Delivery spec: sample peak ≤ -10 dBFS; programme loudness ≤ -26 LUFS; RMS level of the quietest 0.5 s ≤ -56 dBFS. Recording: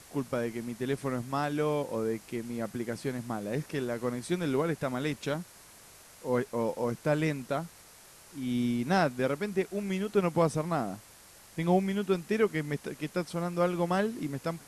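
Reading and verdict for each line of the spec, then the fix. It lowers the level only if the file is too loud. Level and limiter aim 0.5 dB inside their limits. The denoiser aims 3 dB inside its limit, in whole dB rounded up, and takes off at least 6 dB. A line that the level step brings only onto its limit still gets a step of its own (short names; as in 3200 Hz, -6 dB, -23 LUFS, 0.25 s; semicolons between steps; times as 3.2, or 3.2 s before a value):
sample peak -13.0 dBFS: OK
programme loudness -31.5 LUFS: OK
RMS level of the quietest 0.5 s -54 dBFS: fail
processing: denoiser 6 dB, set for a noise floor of -54 dBFS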